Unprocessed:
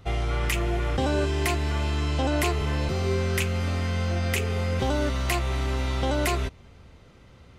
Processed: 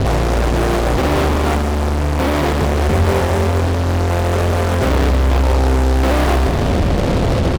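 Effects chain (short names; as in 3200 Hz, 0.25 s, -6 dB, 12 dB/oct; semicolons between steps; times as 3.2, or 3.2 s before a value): delta modulation 32 kbps, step -29 dBFS; steep low-pass 720 Hz 48 dB/oct; notches 60/120/180/240/300/360 Hz; 4.89–5.43 low shelf 300 Hz +8.5 dB; fuzz box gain 51 dB, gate -47 dBFS; doubler 33 ms -13 dB; multi-head echo 67 ms, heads second and third, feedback 68%, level -11.5 dB; Doppler distortion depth 0.49 ms; gain -1 dB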